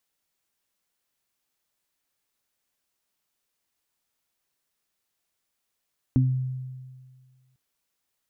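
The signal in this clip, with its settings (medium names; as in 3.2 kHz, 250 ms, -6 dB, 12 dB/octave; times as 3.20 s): additive tone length 1.40 s, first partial 129 Hz, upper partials -0.5 dB, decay 1.75 s, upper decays 0.29 s, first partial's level -16.5 dB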